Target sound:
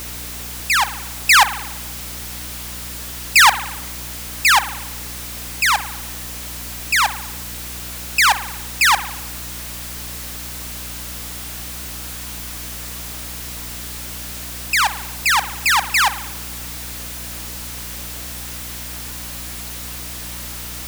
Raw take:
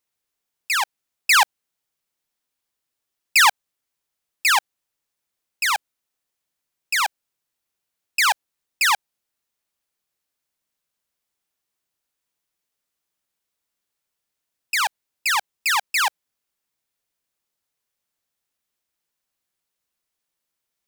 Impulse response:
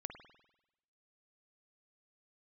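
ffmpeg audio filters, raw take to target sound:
-filter_complex "[0:a]aeval=exprs='val(0)+0.5*0.0355*sgn(val(0))':c=same,asplit=2[a][b];[1:a]atrim=start_sample=2205[c];[b][c]afir=irnorm=-1:irlink=0,volume=1.5dB[d];[a][d]amix=inputs=2:normalize=0,aeval=exprs='val(0)+0.02*(sin(2*PI*60*n/s)+sin(2*PI*2*60*n/s)/2+sin(2*PI*3*60*n/s)/3+sin(2*PI*4*60*n/s)/4+sin(2*PI*5*60*n/s)/5)':c=same,volume=-1dB"

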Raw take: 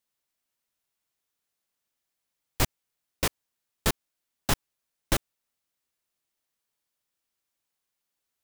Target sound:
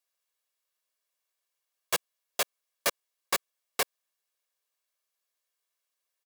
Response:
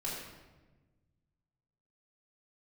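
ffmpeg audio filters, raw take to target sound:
-af "highpass=340,asetrate=59535,aresample=44100,aecho=1:1:1.8:0.47"

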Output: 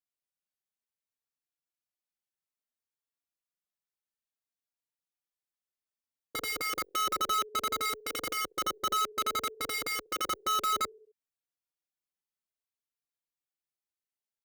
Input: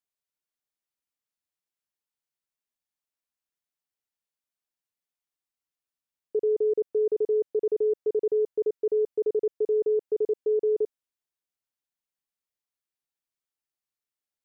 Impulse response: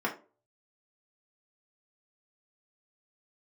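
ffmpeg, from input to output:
-filter_complex "[0:a]aecho=1:1:66|132|198|264:0.0794|0.0453|0.0258|0.0147,aeval=exprs='(mod(11.2*val(0)+1,2)-1)/11.2':c=same,asplit=2[a][b];[b]adelay=3.7,afreqshift=0.6[c];[a][c]amix=inputs=2:normalize=1,volume=-3dB"

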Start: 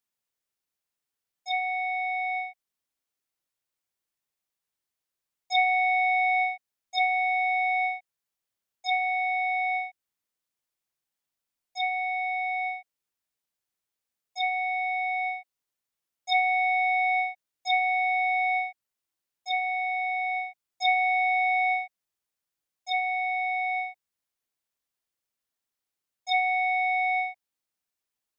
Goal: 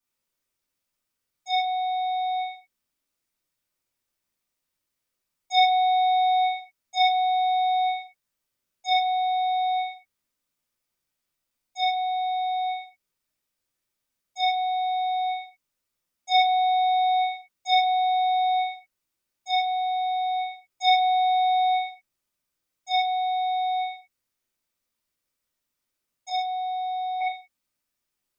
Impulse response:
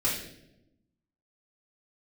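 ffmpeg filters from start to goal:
-filter_complex "[0:a]asettb=1/sr,asplit=3[a][b][c];[a]atrim=end=26.294[d];[b]atrim=start=26.29:end=27.21,asetpts=PTS-STARTPTS,afade=t=in:d=0.004:c=qsin,afade=t=out:st=0.916:d=0.004:c=qsin,equalizer=f=1k:t=o:w=1:g=-9,equalizer=f=2k:t=o:w=1:g=-9,equalizer=f=4k:t=o:w=1:g=-7[e];[c]atrim=start=27.206[f];[d][e]acrossfade=d=0.004:c1=hsin:c2=qsin[g];[g][f]acrossfade=d=0.004:c1=qsin:c2=hsin[h];[1:a]atrim=start_sample=2205,atrim=end_sample=6174[i];[h][i]afir=irnorm=-1:irlink=0,volume=-3.5dB"

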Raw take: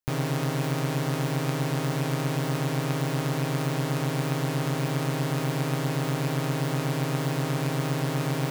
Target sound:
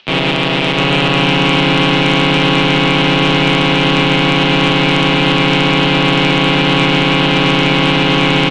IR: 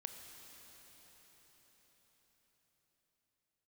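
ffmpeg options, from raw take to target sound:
-filter_complex "[0:a]asplit=2[a][b];[b]asetrate=29433,aresample=44100,atempo=1.49831,volume=-16dB[c];[a][c]amix=inputs=2:normalize=0,alimiter=limit=-22.5dB:level=0:latency=1:release=182,asplit=2[d][e];[1:a]atrim=start_sample=2205[f];[e][f]afir=irnorm=-1:irlink=0,volume=-11.5dB[g];[d][g]amix=inputs=2:normalize=0,acompressor=mode=upward:threshold=-48dB:ratio=2.5,highpass=f=290:t=q:w=0.5412,highpass=f=290:t=q:w=1.307,lowpass=f=3.4k:t=q:w=0.5176,lowpass=f=3.4k:t=q:w=0.7071,lowpass=f=3.4k:t=q:w=1.932,afreqshift=-130,aexciter=amount=4.8:drive=5.4:freq=2.4k,aecho=1:1:700|1120|1372|1523|1614:0.631|0.398|0.251|0.158|0.1,aeval=exprs='0.841*sin(PI/2*7.08*val(0)/0.841)':c=same,volume=-2dB"

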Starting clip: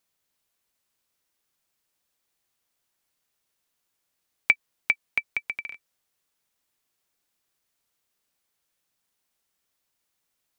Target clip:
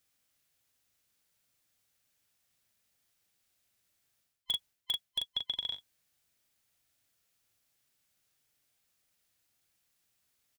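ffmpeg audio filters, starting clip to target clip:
-filter_complex "[0:a]afftfilt=real='real(if(lt(b,960),b+48*(1-2*mod(floor(b/48),2)),b),0)':imag='imag(if(lt(b,960),b+48*(1-2*mod(floor(b/48),2)),b),0)':win_size=2048:overlap=0.75,asplit=2[a][b];[b]aeval=exprs='(mod(4.47*val(0)+1,2)-1)/4.47':c=same,volume=-8dB[c];[a][c]amix=inputs=2:normalize=0,asplit=2[d][e];[e]adelay=40,volume=-10.5dB[f];[d][f]amix=inputs=2:normalize=0,areverse,acompressor=threshold=-29dB:ratio=12,areverse,equalizer=f=100:t=o:w=0.67:g=7,equalizer=f=400:t=o:w=0.67:g=-4,equalizer=f=1k:t=o:w=0.67:g=-6,volume=-1.5dB"

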